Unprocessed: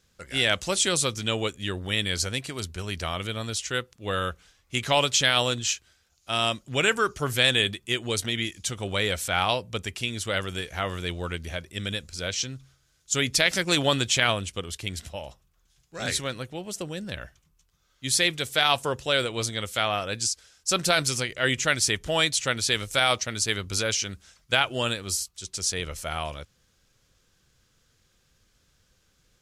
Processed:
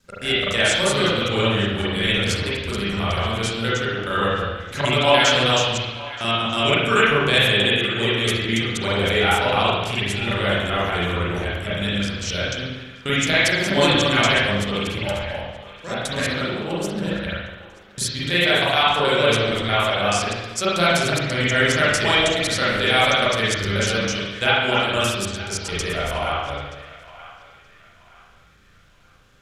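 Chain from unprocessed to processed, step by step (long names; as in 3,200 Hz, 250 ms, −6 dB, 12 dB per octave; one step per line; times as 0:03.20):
slices reordered back to front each 107 ms, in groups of 2
in parallel at −1 dB: downward compressor, threshold −34 dBFS, peak gain reduction 17 dB
on the sum: feedback echo with a band-pass in the loop 926 ms, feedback 41%, band-pass 1,600 Hz, level −15 dB
spring reverb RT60 1.1 s, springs 35/40 ms, chirp 35 ms, DRR −9 dB
level −3.5 dB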